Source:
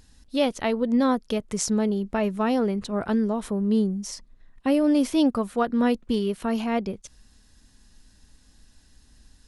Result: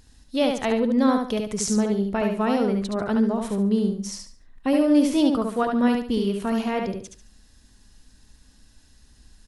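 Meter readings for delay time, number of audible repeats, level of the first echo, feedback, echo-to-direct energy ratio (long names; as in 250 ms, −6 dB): 71 ms, 3, −4.0 dB, 29%, −3.5 dB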